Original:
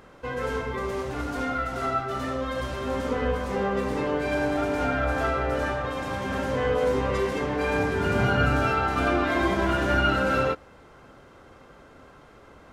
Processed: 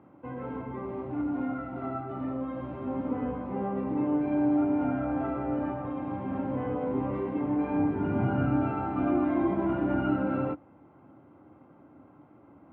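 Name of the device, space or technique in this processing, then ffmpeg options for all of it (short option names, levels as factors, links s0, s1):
bass cabinet: -af "highpass=79,highpass=f=83:w=0.5412,highpass=f=83:w=1.3066,equalizer=f=300:t=q:w=4:g=10,equalizer=f=450:t=q:w=4:g=-9,equalizer=f=840:t=q:w=4:g=5,equalizer=f=1700:t=q:w=4:g=-8,lowpass=f=2400:w=0.5412,lowpass=f=2400:w=1.3066,tiltshelf=f=810:g=6,volume=0.398"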